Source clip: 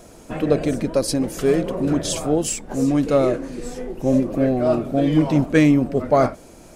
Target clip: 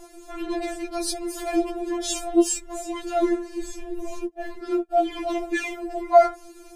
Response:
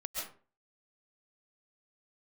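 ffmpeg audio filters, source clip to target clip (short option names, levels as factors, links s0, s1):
-filter_complex "[0:a]asplit=3[s0][s1][s2];[s0]afade=t=out:st=4.2:d=0.02[s3];[s1]agate=range=0.0224:threshold=0.112:ratio=16:detection=peak,afade=t=in:st=4.2:d=0.02,afade=t=out:st=4.91:d=0.02[s4];[s2]afade=t=in:st=4.91:d=0.02[s5];[s3][s4][s5]amix=inputs=3:normalize=0,afftfilt=real='re*4*eq(mod(b,16),0)':imag='im*4*eq(mod(b,16),0)':win_size=2048:overlap=0.75"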